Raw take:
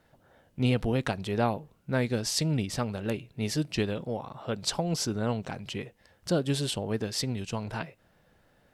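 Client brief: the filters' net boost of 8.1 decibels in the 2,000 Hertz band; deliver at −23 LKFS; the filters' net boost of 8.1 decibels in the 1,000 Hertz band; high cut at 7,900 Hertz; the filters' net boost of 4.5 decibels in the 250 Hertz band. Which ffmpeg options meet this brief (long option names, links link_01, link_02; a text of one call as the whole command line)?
ffmpeg -i in.wav -af "lowpass=7900,equalizer=frequency=250:width_type=o:gain=5,equalizer=frequency=1000:width_type=o:gain=9,equalizer=frequency=2000:width_type=o:gain=7.5,volume=4dB" out.wav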